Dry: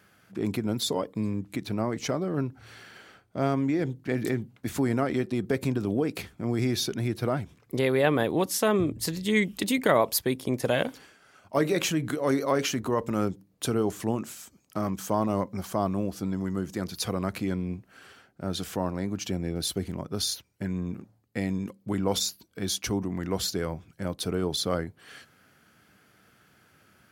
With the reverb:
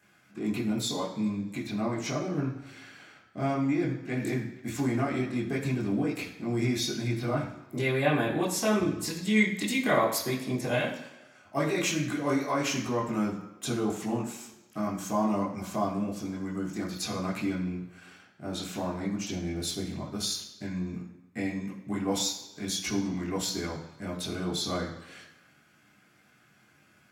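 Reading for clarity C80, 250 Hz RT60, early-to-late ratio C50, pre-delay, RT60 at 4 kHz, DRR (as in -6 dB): 9.0 dB, 0.95 s, 7.0 dB, 14 ms, 1.0 s, -5.5 dB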